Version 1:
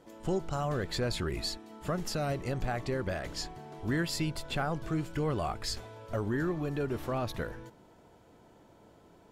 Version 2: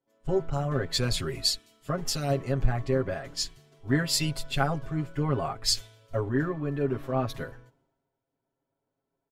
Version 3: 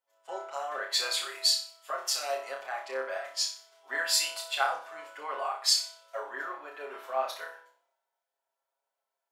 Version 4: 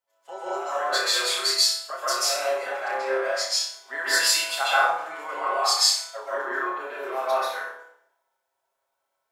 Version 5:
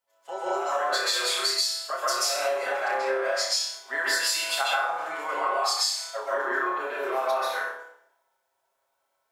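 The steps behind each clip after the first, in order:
comb filter 7.4 ms, depth 98%; multiband upward and downward expander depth 100%
high-pass filter 670 Hz 24 dB per octave; on a send: flutter between parallel walls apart 5.2 metres, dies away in 0.39 s
dense smooth reverb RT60 0.69 s, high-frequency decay 0.6×, pre-delay 120 ms, DRR −8 dB; every ending faded ahead of time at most 150 dB per second
downward compressor 12 to 1, threshold −25 dBFS, peak gain reduction 11 dB; level +3 dB

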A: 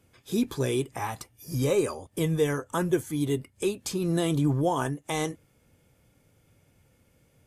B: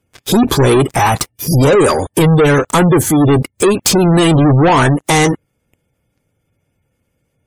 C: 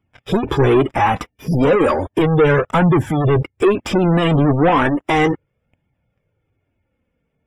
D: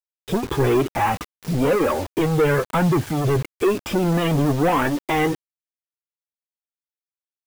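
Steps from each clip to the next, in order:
leveller curve on the samples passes 5; gate on every frequency bin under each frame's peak −30 dB strong; level +7.5 dB
Savitzky-Golay smoothing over 25 samples; flanger 0.34 Hz, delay 0.9 ms, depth 3.8 ms, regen −31%
bit reduction 5 bits; level −5 dB

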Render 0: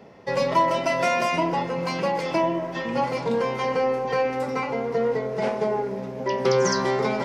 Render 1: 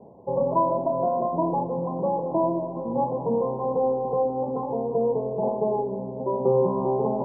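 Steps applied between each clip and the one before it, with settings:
Butterworth low-pass 1,000 Hz 72 dB per octave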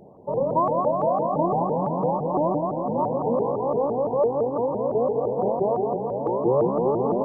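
feedback echo with a high-pass in the loop 215 ms, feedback 81%, high-pass 170 Hz, level −6.5 dB
pitch modulation by a square or saw wave saw up 5.9 Hz, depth 250 cents

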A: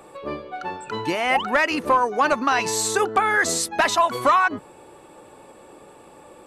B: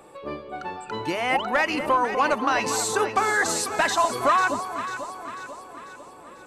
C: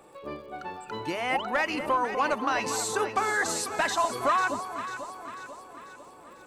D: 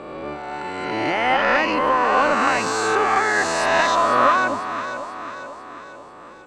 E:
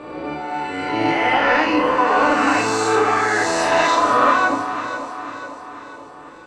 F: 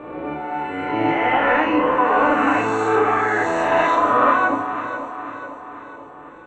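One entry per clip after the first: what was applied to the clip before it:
delay that swaps between a low-pass and a high-pass 247 ms, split 1,000 Hz, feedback 72%, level −7 dB; level −3 dB
surface crackle 110 per second −45 dBFS; level −4.5 dB
peak hold with a rise ahead of every peak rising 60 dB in 1.92 s; high-frequency loss of the air 93 metres; level +4.5 dB
feedback delay network reverb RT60 0.57 s, low-frequency decay 1×, high-frequency decay 0.95×, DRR −1.5 dB; level −2.5 dB
moving average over 9 samples

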